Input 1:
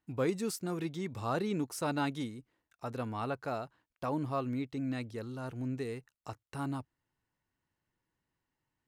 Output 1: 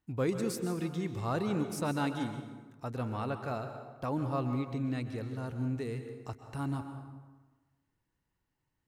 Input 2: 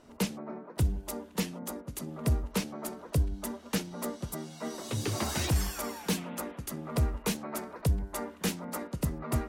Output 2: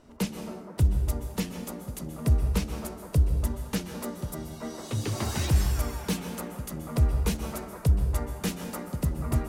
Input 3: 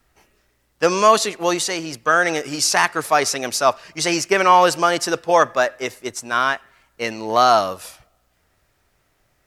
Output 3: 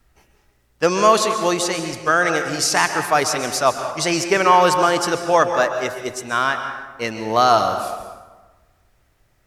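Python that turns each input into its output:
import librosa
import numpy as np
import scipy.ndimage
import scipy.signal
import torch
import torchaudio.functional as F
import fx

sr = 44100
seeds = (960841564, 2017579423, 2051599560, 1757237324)

y = fx.low_shelf(x, sr, hz=140.0, db=8.5)
y = fx.rev_plate(y, sr, seeds[0], rt60_s=1.3, hf_ratio=0.6, predelay_ms=115, drr_db=7.0)
y = y * librosa.db_to_amplitude(-1.0)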